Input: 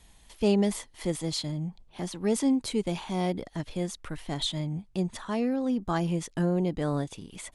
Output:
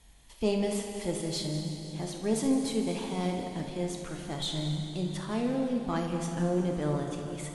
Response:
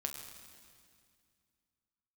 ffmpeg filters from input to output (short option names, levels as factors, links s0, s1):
-filter_complex "[0:a]asplit=2[s0][s1];[s1]aeval=exprs='clip(val(0),-1,0.0178)':c=same,volume=0.562[s2];[s0][s2]amix=inputs=2:normalize=0[s3];[1:a]atrim=start_sample=2205,asetrate=27342,aresample=44100[s4];[s3][s4]afir=irnorm=-1:irlink=0,volume=0.422" -ar 32000 -c:a libmp3lame -b:a 56k